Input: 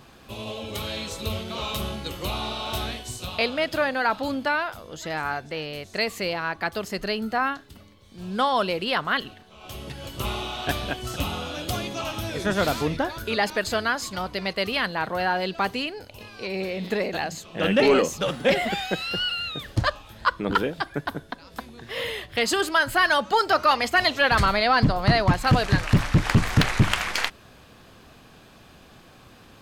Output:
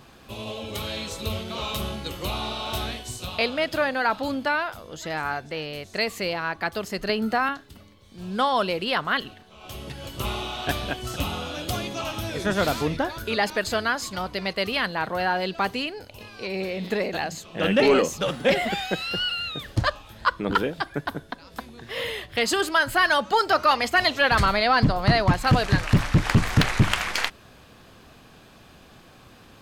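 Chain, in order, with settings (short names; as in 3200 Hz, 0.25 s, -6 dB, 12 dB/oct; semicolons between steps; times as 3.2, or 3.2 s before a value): 7.09–7.49 three-band squash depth 70%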